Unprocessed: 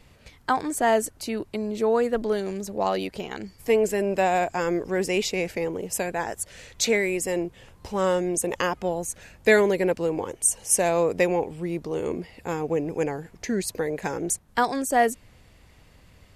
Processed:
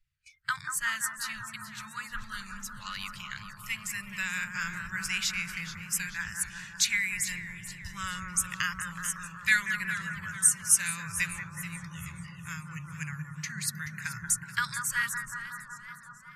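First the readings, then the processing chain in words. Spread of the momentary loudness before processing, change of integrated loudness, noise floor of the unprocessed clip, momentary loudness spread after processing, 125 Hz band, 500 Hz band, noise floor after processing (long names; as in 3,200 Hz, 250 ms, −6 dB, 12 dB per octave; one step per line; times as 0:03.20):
10 LU, −5.5 dB, −55 dBFS, 15 LU, −5.0 dB, below −40 dB, −49 dBFS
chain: on a send: bucket-brigade delay 185 ms, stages 2,048, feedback 84%, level −5.5 dB
on the sum: noise reduction from a noise print of the clip's start 28 dB
elliptic band-stop filter 140–1,400 Hz, stop band 40 dB
feedback echo with a swinging delay time 433 ms, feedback 48%, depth 122 cents, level −13.5 dB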